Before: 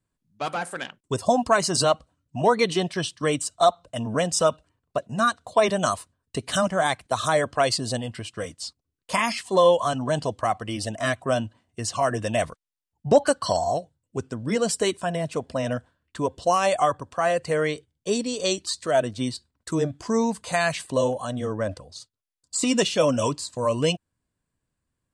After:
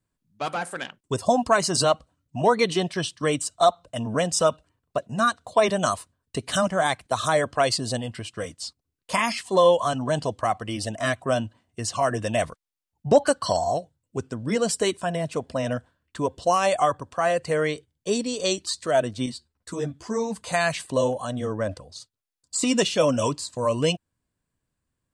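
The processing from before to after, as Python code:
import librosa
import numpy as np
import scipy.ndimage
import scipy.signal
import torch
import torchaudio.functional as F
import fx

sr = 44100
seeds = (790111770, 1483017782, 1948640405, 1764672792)

y = fx.ensemble(x, sr, at=(19.26, 20.36))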